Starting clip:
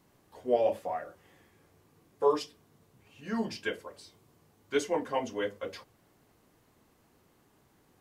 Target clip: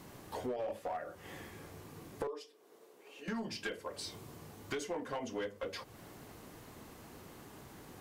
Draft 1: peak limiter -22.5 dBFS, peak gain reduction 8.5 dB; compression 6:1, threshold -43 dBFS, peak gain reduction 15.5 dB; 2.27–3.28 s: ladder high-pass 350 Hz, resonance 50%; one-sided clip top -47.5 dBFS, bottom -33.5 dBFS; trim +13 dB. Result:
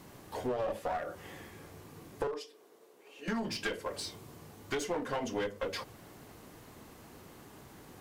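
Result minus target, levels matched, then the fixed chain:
compression: peak gain reduction -6 dB
peak limiter -22.5 dBFS, peak gain reduction 8.5 dB; compression 6:1, threshold -50 dBFS, peak gain reduction 21 dB; 2.27–3.28 s: ladder high-pass 350 Hz, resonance 50%; one-sided clip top -47.5 dBFS, bottom -33.5 dBFS; trim +13 dB

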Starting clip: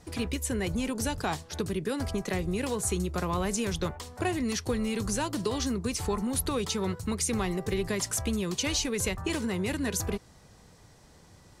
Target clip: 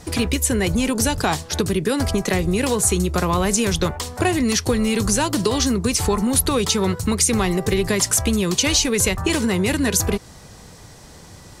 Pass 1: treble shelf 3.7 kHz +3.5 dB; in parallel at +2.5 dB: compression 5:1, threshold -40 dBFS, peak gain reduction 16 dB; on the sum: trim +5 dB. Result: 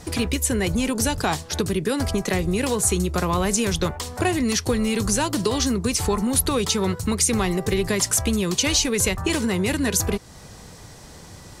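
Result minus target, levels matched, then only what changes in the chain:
compression: peak gain reduction +7.5 dB
change: compression 5:1, threshold -30.5 dBFS, peak gain reduction 8 dB

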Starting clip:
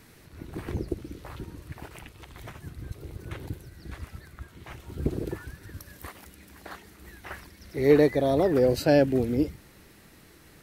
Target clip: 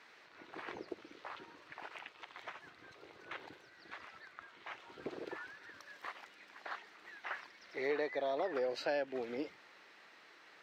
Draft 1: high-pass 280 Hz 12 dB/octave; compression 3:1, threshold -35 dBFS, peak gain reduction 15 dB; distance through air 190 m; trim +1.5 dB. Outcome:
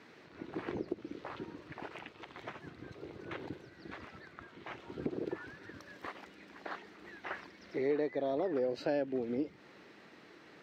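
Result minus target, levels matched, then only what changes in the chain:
250 Hz band +6.0 dB
change: high-pass 790 Hz 12 dB/octave

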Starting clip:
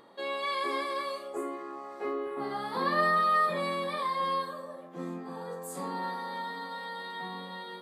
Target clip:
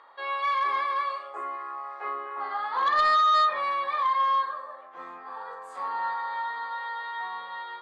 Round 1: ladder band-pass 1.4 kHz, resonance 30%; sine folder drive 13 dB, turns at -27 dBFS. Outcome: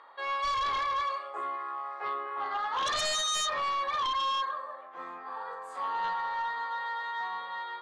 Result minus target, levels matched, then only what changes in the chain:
sine folder: distortion +18 dB
change: sine folder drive 13 dB, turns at -18.5 dBFS

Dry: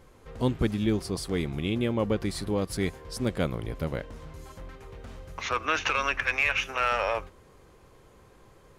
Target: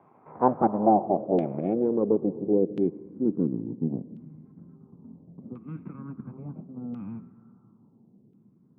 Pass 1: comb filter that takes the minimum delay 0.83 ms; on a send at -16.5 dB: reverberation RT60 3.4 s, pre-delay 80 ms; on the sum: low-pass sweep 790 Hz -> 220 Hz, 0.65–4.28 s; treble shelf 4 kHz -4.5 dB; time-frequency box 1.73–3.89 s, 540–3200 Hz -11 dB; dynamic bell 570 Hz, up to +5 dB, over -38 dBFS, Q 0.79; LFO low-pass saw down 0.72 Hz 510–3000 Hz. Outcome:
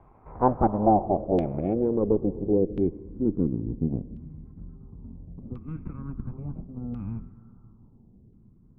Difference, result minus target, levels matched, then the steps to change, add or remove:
125 Hz band +5.5 dB
add after low-pass sweep: high-pass 150 Hz 24 dB/octave

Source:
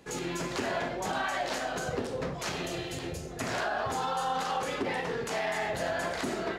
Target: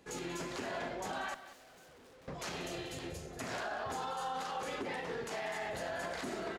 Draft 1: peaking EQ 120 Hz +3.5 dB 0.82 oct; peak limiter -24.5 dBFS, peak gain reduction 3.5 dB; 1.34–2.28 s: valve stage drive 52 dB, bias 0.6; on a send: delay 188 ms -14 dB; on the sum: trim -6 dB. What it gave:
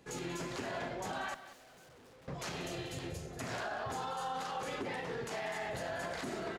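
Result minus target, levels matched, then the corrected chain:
125 Hz band +4.0 dB
peaking EQ 120 Hz -3 dB 0.82 oct; peak limiter -24.5 dBFS, peak gain reduction 3 dB; 1.34–2.28 s: valve stage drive 52 dB, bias 0.6; on a send: delay 188 ms -14 dB; on the sum: trim -6 dB

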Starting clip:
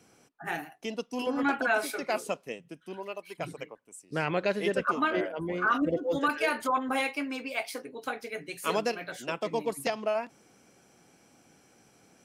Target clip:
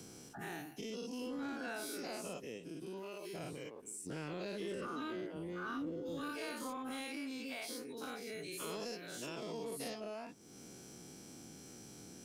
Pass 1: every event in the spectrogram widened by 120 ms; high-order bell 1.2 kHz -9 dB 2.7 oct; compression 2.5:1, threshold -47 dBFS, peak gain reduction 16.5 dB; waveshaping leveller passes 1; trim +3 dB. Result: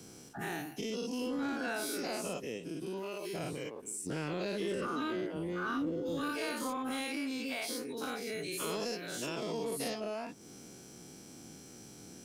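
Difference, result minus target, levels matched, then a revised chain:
compression: peak gain reduction -6.5 dB
every event in the spectrogram widened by 120 ms; high-order bell 1.2 kHz -9 dB 2.7 oct; compression 2.5:1, threshold -57.5 dBFS, peak gain reduction 23 dB; waveshaping leveller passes 1; trim +3 dB

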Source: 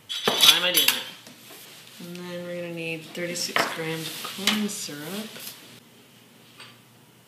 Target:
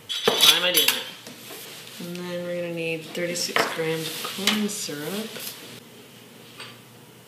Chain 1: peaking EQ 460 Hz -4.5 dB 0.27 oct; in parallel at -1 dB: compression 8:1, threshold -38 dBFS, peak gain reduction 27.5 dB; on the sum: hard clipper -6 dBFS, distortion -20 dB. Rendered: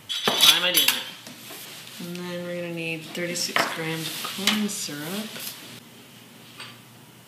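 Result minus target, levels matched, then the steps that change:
500 Hz band -4.5 dB
change: peaking EQ 460 Hz +6.5 dB 0.27 oct

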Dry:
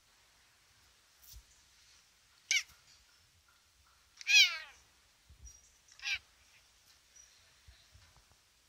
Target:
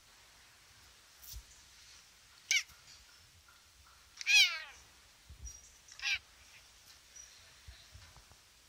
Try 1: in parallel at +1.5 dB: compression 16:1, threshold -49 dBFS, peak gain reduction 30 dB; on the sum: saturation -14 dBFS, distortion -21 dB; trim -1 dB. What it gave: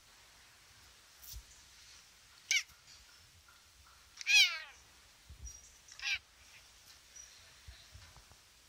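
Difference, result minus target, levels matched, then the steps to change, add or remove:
compression: peak gain reduction +7 dB
change: compression 16:1, threshold -41.5 dBFS, peak gain reduction 23 dB

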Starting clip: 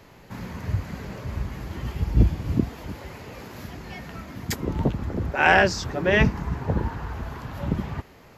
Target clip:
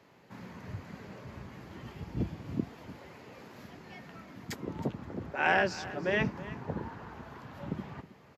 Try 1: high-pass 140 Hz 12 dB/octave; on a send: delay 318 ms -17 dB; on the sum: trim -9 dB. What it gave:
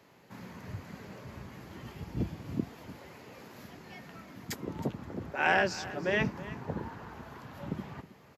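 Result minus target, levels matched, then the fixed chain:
8 kHz band +3.5 dB
high-pass 140 Hz 12 dB/octave; treble shelf 7.8 kHz -9.5 dB; on a send: delay 318 ms -17 dB; on the sum: trim -9 dB

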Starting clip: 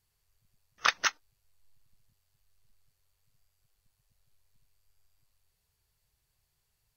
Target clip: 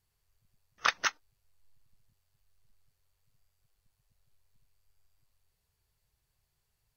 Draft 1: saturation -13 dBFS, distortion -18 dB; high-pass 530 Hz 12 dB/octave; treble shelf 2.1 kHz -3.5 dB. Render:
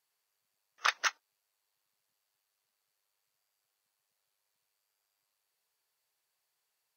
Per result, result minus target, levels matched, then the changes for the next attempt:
saturation: distortion +18 dB; 500 Hz band -2.5 dB
change: saturation -2.5 dBFS, distortion -37 dB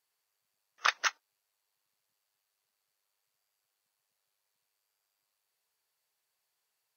500 Hz band -2.5 dB
remove: high-pass 530 Hz 12 dB/octave

